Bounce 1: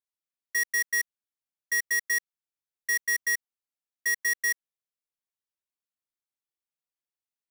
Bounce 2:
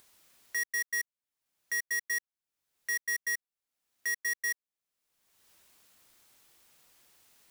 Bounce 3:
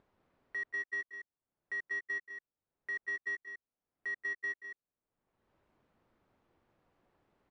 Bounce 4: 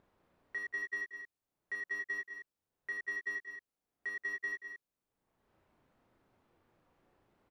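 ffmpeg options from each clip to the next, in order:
ffmpeg -i in.wav -af "acompressor=mode=upward:threshold=-31dB:ratio=2.5,volume=-5.5dB" out.wav
ffmpeg -i in.wav -af "adynamicsmooth=sensitivity=1:basefreq=990,aecho=1:1:180|203:0.188|0.398,volume=2.5dB" out.wav
ffmpeg -i in.wav -filter_complex "[0:a]asplit=2[link_01][link_02];[link_02]adelay=34,volume=-2.5dB[link_03];[link_01][link_03]amix=inputs=2:normalize=0" out.wav

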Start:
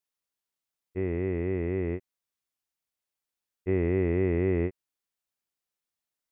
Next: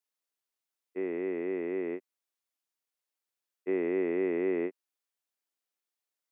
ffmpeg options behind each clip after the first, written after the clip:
ffmpeg -i in.wav -af "highpass=frequency=260:width=0.5412,highpass=frequency=260:width=1.3066,volume=-1.5dB" out.wav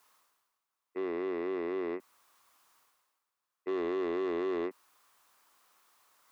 ffmpeg -i in.wav -af "equalizer=frequency=1100:width=1.6:gain=14.5,areverse,acompressor=mode=upward:threshold=-50dB:ratio=2.5,areverse,asoftclip=type=tanh:threshold=-28dB" out.wav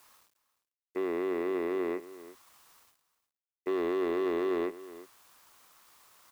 ffmpeg -i in.wav -filter_complex "[0:a]asplit=2[link_01][link_02];[link_02]acompressor=threshold=-41dB:ratio=6,volume=0dB[link_03];[link_01][link_03]amix=inputs=2:normalize=0,acrusher=bits=9:mix=0:aa=0.000001,aecho=1:1:352:0.15" out.wav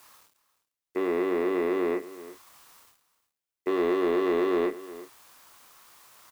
ffmpeg -i in.wav -filter_complex "[0:a]asplit=2[link_01][link_02];[link_02]adelay=28,volume=-7.5dB[link_03];[link_01][link_03]amix=inputs=2:normalize=0,volume=5dB" out.wav

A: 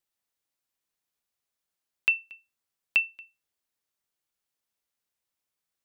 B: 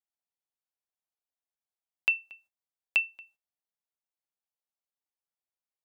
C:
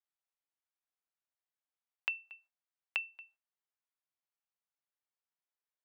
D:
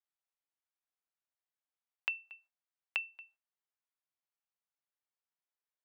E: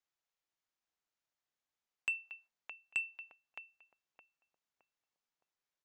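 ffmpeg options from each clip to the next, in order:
ffmpeg -i in.wav -af "agate=range=-13dB:threshold=-60dB:ratio=16:detection=peak,equalizer=frequency=750:width=1.5:gain=9.5,volume=-2.5dB" out.wav
ffmpeg -i in.wav -af "acompressor=threshold=-29dB:ratio=6,bandpass=frequency=1400:width_type=q:width=0.74:csg=0" out.wav
ffmpeg -i in.wav -af anull out.wav
ffmpeg -i in.wav -filter_complex "[0:a]asplit=2[link_01][link_02];[link_02]adelay=616,lowpass=frequency=850:poles=1,volume=-7dB,asplit=2[link_03][link_04];[link_04]adelay=616,lowpass=frequency=850:poles=1,volume=0.44,asplit=2[link_05][link_06];[link_06]adelay=616,lowpass=frequency=850:poles=1,volume=0.44,asplit=2[link_07][link_08];[link_08]adelay=616,lowpass=frequency=850:poles=1,volume=0.44,asplit=2[link_09][link_10];[link_10]adelay=616,lowpass=frequency=850:poles=1,volume=0.44[link_11];[link_01][link_03][link_05][link_07][link_09][link_11]amix=inputs=6:normalize=0,aresample=16000,asoftclip=type=tanh:threshold=-29dB,aresample=44100,volume=3dB" out.wav

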